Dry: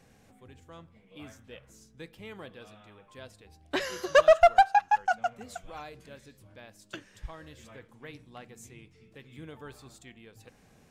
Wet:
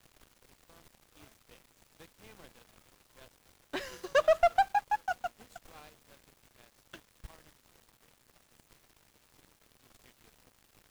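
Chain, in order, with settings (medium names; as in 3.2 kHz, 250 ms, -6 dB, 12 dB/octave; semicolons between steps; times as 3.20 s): 7.49–9.80 s: compression, threshold -52 dBFS, peak gain reduction 11 dB; added noise pink -47 dBFS; crossover distortion -44 dBFS; trim -6 dB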